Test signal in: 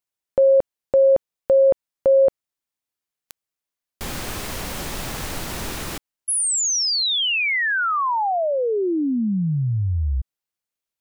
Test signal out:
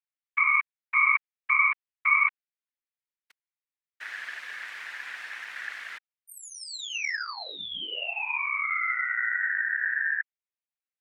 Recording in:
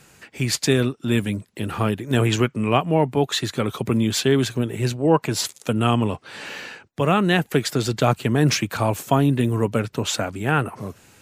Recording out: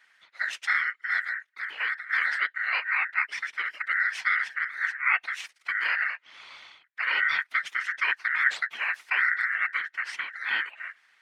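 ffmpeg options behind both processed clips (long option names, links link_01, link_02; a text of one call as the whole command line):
ffmpeg -i in.wav -af "afftfilt=real='hypot(re,im)*cos(2*PI*random(0))':imag='hypot(re,im)*sin(2*PI*random(1))':win_size=512:overlap=0.75,aeval=exprs='val(0)*sin(2*PI*1700*n/s)':channel_layout=same,bandpass=frequency=2000:width_type=q:width=1.8:csg=0,volume=3.5dB" out.wav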